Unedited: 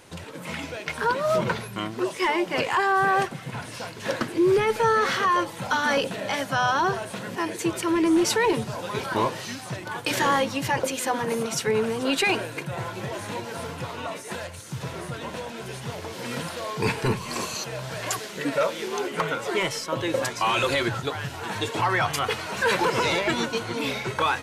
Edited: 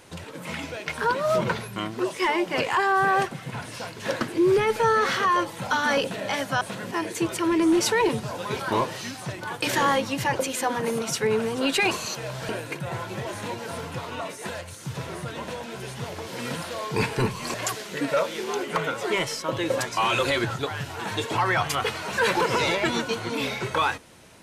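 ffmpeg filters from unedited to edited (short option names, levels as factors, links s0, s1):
-filter_complex "[0:a]asplit=5[s0][s1][s2][s3][s4];[s0]atrim=end=6.612[s5];[s1]atrim=start=7.048:end=12.352[s6];[s2]atrim=start=17.398:end=17.982[s7];[s3]atrim=start=12.348:end=17.402[s8];[s4]atrim=start=17.978[s9];[s5][s6]acrossfade=d=0.004:c1=hsin:c2=hsin[s10];[s10][s7]acrossfade=d=0.004:c1=hsin:c2=hsin[s11];[s11][s8]acrossfade=d=0.004:c1=hsin:c2=hsin[s12];[s12][s9]acrossfade=d=0.004:c1=hsin:c2=hsin"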